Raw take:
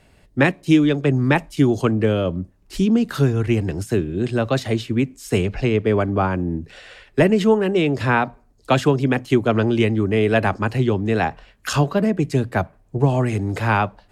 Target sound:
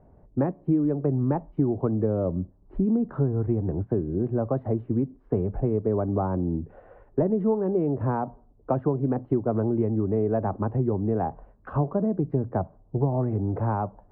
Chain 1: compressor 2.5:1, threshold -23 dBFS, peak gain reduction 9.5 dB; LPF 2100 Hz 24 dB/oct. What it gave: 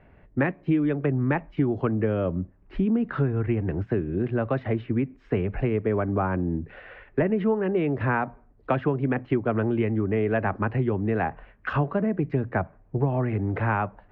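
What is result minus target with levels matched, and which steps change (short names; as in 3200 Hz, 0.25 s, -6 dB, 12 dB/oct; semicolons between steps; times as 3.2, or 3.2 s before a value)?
2000 Hz band +16.5 dB
change: LPF 980 Hz 24 dB/oct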